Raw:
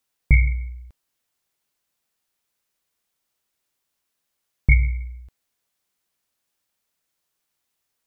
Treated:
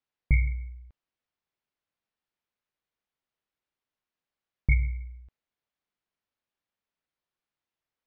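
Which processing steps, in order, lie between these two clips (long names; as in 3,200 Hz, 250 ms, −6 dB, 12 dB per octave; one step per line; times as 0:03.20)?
high-frequency loss of the air 210 metres
level −7 dB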